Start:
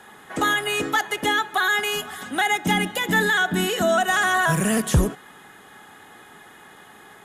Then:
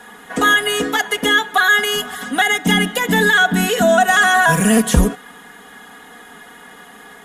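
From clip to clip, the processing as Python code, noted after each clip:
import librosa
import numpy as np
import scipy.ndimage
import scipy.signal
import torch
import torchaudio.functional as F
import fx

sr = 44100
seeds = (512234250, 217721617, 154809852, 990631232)

y = x + 0.76 * np.pad(x, (int(4.2 * sr / 1000.0), 0))[:len(x)]
y = y * librosa.db_to_amplitude(4.5)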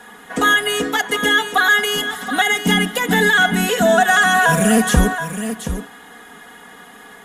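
y = x + 10.0 ** (-10.0 / 20.0) * np.pad(x, (int(725 * sr / 1000.0), 0))[:len(x)]
y = y * librosa.db_to_amplitude(-1.0)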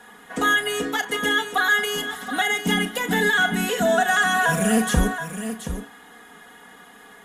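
y = fx.doubler(x, sr, ms=36.0, db=-12.0)
y = y * librosa.db_to_amplitude(-6.0)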